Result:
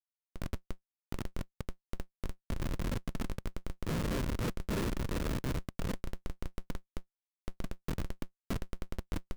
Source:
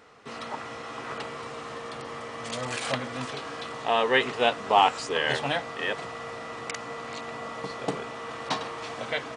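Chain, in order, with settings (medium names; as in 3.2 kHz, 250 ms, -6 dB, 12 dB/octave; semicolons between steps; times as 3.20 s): filtered feedback delay 166 ms, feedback 44%, low-pass 2.5 kHz, level -16 dB; simulated room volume 950 m³, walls mixed, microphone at 0.75 m; compression 2:1, threshold -29 dBFS, peak gain reduction 9 dB; sample-rate reducer 1.2 kHz, jitter 0%; peaking EQ 210 Hz +13.5 dB 1.2 oct; Schmitt trigger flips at -21.5 dBFS; short-mantissa float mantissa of 2-bit; dynamic bell 770 Hz, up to -7 dB, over -56 dBFS, Q 5.2; trim -4.5 dB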